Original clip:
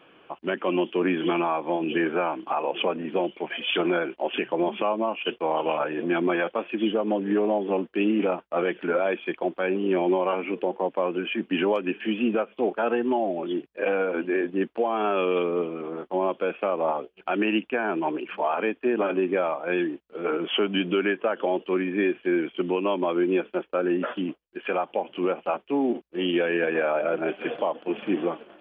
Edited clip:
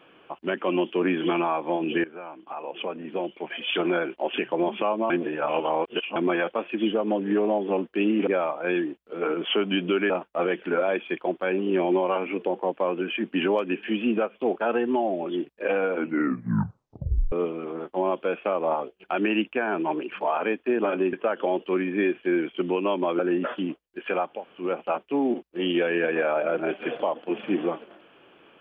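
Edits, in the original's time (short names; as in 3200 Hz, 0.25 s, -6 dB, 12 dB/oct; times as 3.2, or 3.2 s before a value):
2.04–4.03 fade in, from -18 dB
5.1–6.16 reverse
14.13 tape stop 1.36 s
19.3–21.13 move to 8.27
23.19–23.78 cut
24.95–25.22 room tone, crossfade 0.24 s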